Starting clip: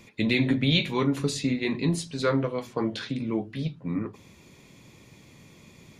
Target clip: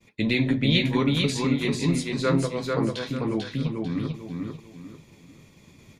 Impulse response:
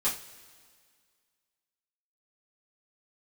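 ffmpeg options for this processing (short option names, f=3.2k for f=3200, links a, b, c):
-af "agate=range=-33dB:threshold=-47dB:ratio=3:detection=peak,lowshelf=f=61:g=7,aecho=1:1:444|888|1332|1776:0.668|0.214|0.0684|0.0219"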